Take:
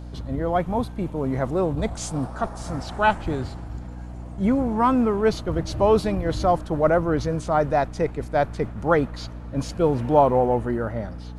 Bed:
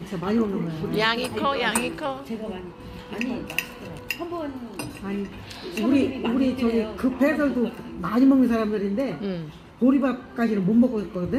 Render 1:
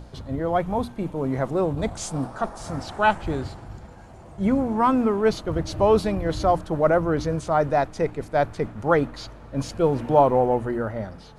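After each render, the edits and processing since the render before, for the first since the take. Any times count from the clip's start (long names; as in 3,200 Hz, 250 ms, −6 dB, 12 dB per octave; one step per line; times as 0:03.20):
mains-hum notches 60/120/180/240/300 Hz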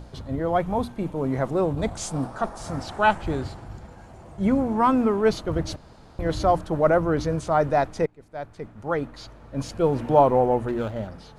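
0:05.76–0:06.19: fill with room tone
0:08.06–0:10.06: fade in, from −23.5 dB
0:10.68–0:11.08: running median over 25 samples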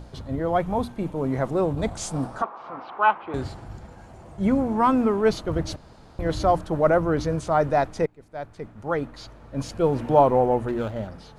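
0:02.42–0:03.34: loudspeaker in its box 460–2,700 Hz, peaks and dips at 610 Hz −5 dB, 1,100 Hz +8 dB, 1,800 Hz −7 dB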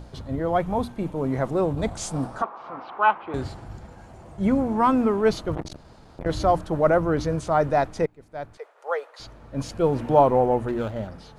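0:05.55–0:06.26: saturating transformer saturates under 670 Hz
0:08.57–0:09.20: elliptic high-pass filter 460 Hz, stop band 50 dB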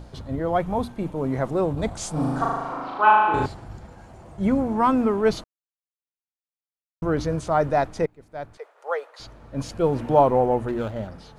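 0:02.13–0:03.46: flutter between parallel walls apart 6.6 metres, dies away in 1.4 s
0:05.44–0:07.02: silence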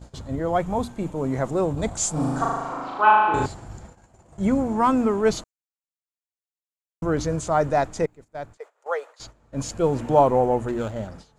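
noise gate −42 dBFS, range −13 dB
parametric band 7,200 Hz +12.5 dB 0.43 octaves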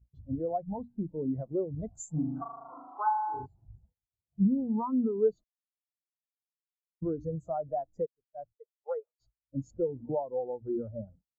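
downward compressor 10 to 1, threshold −26 dBFS, peak gain reduction 15.5 dB
every bin expanded away from the loudest bin 2.5 to 1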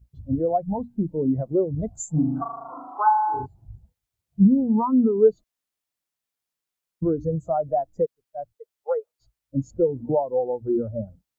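level +9.5 dB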